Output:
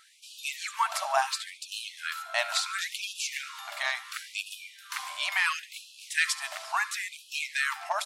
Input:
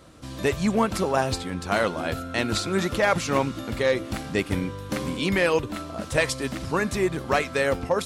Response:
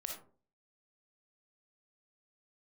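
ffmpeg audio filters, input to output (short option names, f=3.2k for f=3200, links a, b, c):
-af "aecho=1:1:72|144|216|288:0.126|0.0667|0.0354|0.0187,afftfilt=real='re*gte(b*sr/1024,560*pow(2500/560,0.5+0.5*sin(2*PI*0.72*pts/sr)))':imag='im*gte(b*sr/1024,560*pow(2500/560,0.5+0.5*sin(2*PI*0.72*pts/sr)))':win_size=1024:overlap=0.75"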